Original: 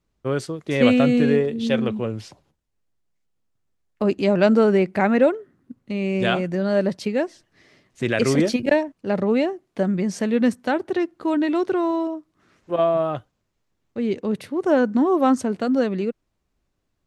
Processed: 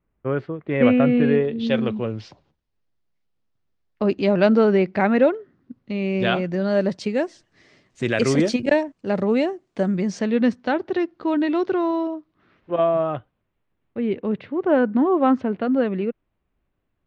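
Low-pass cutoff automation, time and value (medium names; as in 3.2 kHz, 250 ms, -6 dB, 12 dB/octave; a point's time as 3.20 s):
low-pass 24 dB/octave
1.02 s 2.4 kHz
1.79 s 5.2 kHz
6.38 s 5.2 kHz
7.16 s 8.6 kHz
9.88 s 8.6 kHz
10.36 s 5.1 kHz
11.94 s 5.1 kHz
12.90 s 3.1 kHz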